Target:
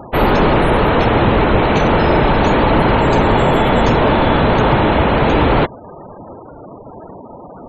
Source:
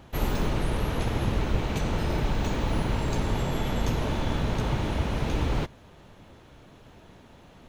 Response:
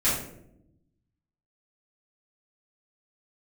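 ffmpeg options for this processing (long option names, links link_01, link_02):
-filter_complex "[0:a]asplit=2[link_01][link_02];[link_02]highpass=frequency=720:poles=1,volume=19dB,asoftclip=type=tanh:threshold=-12dB[link_03];[link_01][link_03]amix=inputs=2:normalize=0,lowpass=frequency=1000:poles=1,volume=-6dB,acontrast=89,afftfilt=real='re*gte(hypot(re,im),0.0224)':imag='im*gte(hypot(re,im),0.0224)':win_size=1024:overlap=0.75,volume=6dB"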